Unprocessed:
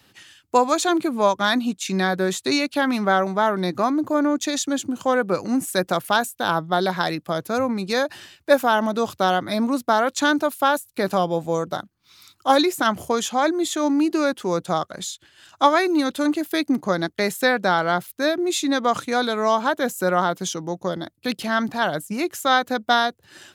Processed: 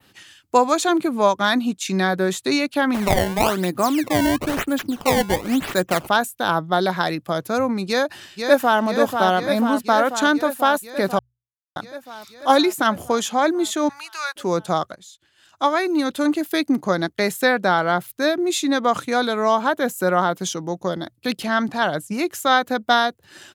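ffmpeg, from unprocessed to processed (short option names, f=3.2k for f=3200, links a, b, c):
-filter_complex "[0:a]asplit=3[a][b][c];[a]afade=t=out:st=2.93:d=0.02[d];[b]acrusher=samples=20:mix=1:aa=0.000001:lfo=1:lforange=32:lforate=1,afade=t=in:st=2.93:d=0.02,afade=t=out:st=6.06:d=0.02[e];[c]afade=t=in:st=6.06:d=0.02[f];[d][e][f]amix=inputs=3:normalize=0,asplit=2[g][h];[h]afade=t=in:st=7.87:d=0.01,afade=t=out:st=8.81:d=0.01,aecho=0:1:490|980|1470|1960|2450|2940|3430|3920|4410|4900|5390|5880:0.530884|0.398163|0.298622|0.223967|0.167975|0.125981|0.094486|0.0708645|0.0531484|0.0398613|0.029896|0.022422[i];[g][i]amix=inputs=2:normalize=0,asettb=1/sr,asplit=3[j][k][l];[j]atrim=end=13.894[m];[k]atrim=start=13.89:end=14.36,asetpts=PTS-STARTPTS,afade=t=in:d=0.004:c=qsin,afade=t=out:st=0.466:d=0.004:c=qsin,highpass=f=1k:w=0.5412,highpass=f=1k:w=1.3066[n];[l]atrim=start=14.356[o];[m][n]acrossfade=d=0.004:c1=hsin:c2=qsin[p];[p][o]acrossfade=d=0.004:c1=qsin:c2=hsin,asettb=1/sr,asplit=3[q][r][s];[q]atrim=end=21.444[t];[r]atrim=start=21.44:end=22.12,asetpts=PTS-STARTPTS,afade=t=in:d=0.004:c=qsin,afade=t=out:st=0.676:d=0.004:c=qsin,lowpass=11k[u];[s]atrim=start=22.116[v];[t][u]acrossfade=d=0.004:c1=hsin:c2=qsin[w];[w][v]acrossfade=d=0.004:c1=qsin:c2=hsin,asplit=4[x][y][z][aa];[x]atrim=end=11.19,asetpts=PTS-STARTPTS,afade=t=out:st=11.186:d=0.004:c=hsin[ab];[y]atrim=start=11.19:end=11.76,asetpts=PTS-STARTPTS,volume=0[ac];[z]atrim=start=11.76:end=14.95,asetpts=PTS-STARTPTS,afade=t=in:d=0.004:c=hsin,afade=t=out:st=3.186:d=0.004:c=hsin:silence=0.0944061[ad];[aa]atrim=start=14.95,asetpts=PTS-STARTPTS,afade=t=in:d=1.29:silence=0.0944061[ae];[ab][ac][ad][ae]concat=n=4:v=0:a=1,bandreject=f=60:t=h:w=6,bandreject=f=120:t=h:w=6,adynamicequalizer=threshold=0.0126:dfrequency=5400:dqfactor=0.97:tfrequency=5400:tqfactor=0.97:attack=5:release=100:ratio=0.375:range=2.5:mode=cutabove:tftype=bell,volume=1.5dB"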